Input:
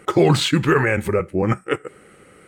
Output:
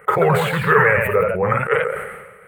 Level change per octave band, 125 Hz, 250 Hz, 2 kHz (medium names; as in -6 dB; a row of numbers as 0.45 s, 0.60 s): -1.5 dB, -7.0 dB, +6.5 dB